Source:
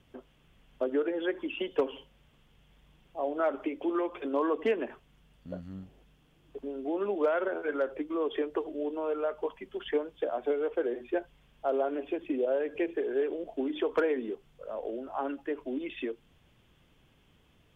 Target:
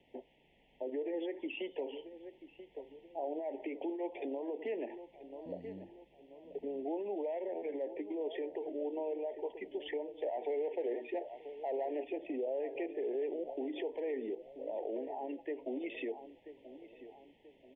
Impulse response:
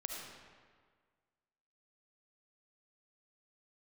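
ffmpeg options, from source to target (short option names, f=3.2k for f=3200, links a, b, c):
-filter_complex "[0:a]asettb=1/sr,asplit=3[a][b][c];[a]atrim=end=10.224[d];[b]atrim=start=10.22:end=12.04,asetpts=PTS-STARTPTS,afade=t=in:d=0.004:c=qsin,afade=t=out:st=1.816:d=0.004:c=qsin,asplit=2[e][f];[f]highpass=f=720:p=1,volume=13dB,asoftclip=type=tanh:threshold=-18.5dB[g];[e][g]amix=inputs=2:normalize=0,lowpass=f=2.7k:p=1,volume=-6dB[h];[c]atrim=start=12.036[i];[d][h]acrossfade=d=0.004:c1=hsin:c2=qsin[j];[j][i]acrossfade=d=0.004:c1=qsin:c2=hsin,asplit=2[k][l];[l]acompressor=threshold=-37dB:ratio=6,volume=2.5dB[m];[k][m]amix=inputs=2:normalize=0,equalizer=f=1.2k:t=o:w=0.25:g=11,asplit=2[n][o];[o]adelay=984,lowpass=f=1.4k:p=1,volume=-15dB,asplit=2[p][q];[q]adelay=984,lowpass=f=1.4k:p=1,volume=0.43,asplit=2[r][s];[s]adelay=984,lowpass=f=1.4k:p=1,volume=0.43,asplit=2[t][u];[u]adelay=984,lowpass=f=1.4k:p=1,volume=0.43[v];[p][r][t][v]amix=inputs=4:normalize=0[w];[n][w]amix=inputs=2:normalize=0,alimiter=limit=-23dB:level=0:latency=1:release=41,asuperstop=centerf=1300:order=12:qfactor=1.4,acrossover=split=260 2900:gain=0.158 1 0.112[x][y][z];[x][y][z]amix=inputs=3:normalize=0,volume=-5.5dB"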